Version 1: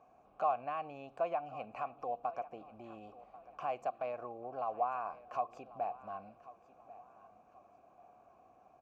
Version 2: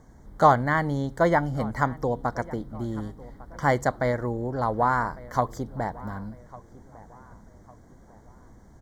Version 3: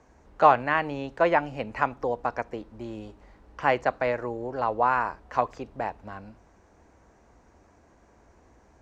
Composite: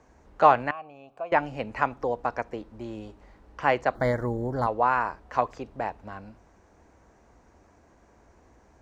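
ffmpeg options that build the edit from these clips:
-filter_complex "[2:a]asplit=3[s0][s1][s2];[s0]atrim=end=0.712[s3];[0:a]atrim=start=0.708:end=1.322[s4];[s1]atrim=start=1.318:end=3.952[s5];[1:a]atrim=start=3.948:end=4.672[s6];[s2]atrim=start=4.668[s7];[s3][s4]acrossfade=d=0.004:c1=hsin:c2=hsin[s8];[s8][s5]acrossfade=d=0.004:c1=hsin:c2=hsin[s9];[s9][s6]acrossfade=d=0.004:c1=hsin:c2=hsin[s10];[s10][s7]acrossfade=d=0.004:c1=hsin:c2=hsin"

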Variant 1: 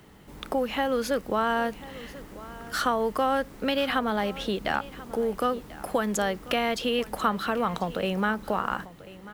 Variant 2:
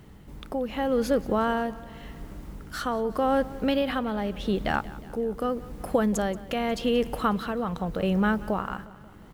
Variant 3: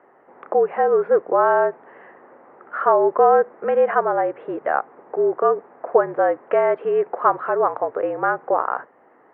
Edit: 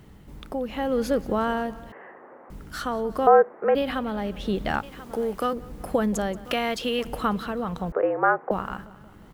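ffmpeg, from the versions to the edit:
-filter_complex "[2:a]asplit=3[s0][s1][s2];[0:a]asplit=2[s3][s4];[1:a]asplit=6[s5][s6][s7][s8][s9][s10];[s5]atrim=end=1.922[s11];[s0]atrim=start=1.918:end=2.502[s12];[s6]atrim=start=2.498:end=3.272[s13];[s1]atrim=start=3.268:end=3.752[s14];[s7]atrim=start=3.748:end=4.832[s15];[s3]atrim=start=4.828:end=5.532[s16];[s8]atrim=start=5.528:end=6.452[s17];[s4]atrim=start=6.448:end=7.052[s18];[s9]atrim=start=7.048:end=7.922[s19];[s2]atrim=start=7.918:end=8.512[s20];[s10]atrim=start=8.508[s21];[s11][s12]acrossfade=d=0.004:c1=hsin:c2=hsin[s22];[s22][s13]acrossfade=d=0.004:c1=hsin:c2=hsin[s23];[s23][s14]acrossfade=d=0.004:c1=hsin:c2=hsin[s24];[s24][s15]acrossfade=d=0.004:c1=hsin:c2=hsin[s25];[s25][s16]acrossfade=d=0.004:c1=hsin:c2=hsin[s26];[s26][s17]acrossfade=d=0.004:c1=hsin:c2=hsin[s27];[s27][s18]acrossfade=d=0.004:c1=hsin:c2=hsin[s28];[s28][s19]acrossfade=d=0.004:c1=hsin:c2=hsin[s29];[s29][s20]acrossfade=d=0.004:c1=hsin:c2=hsin[s30];[s30][s21]acrossfade=d=0.004:c1=hsin:c2=hsin"

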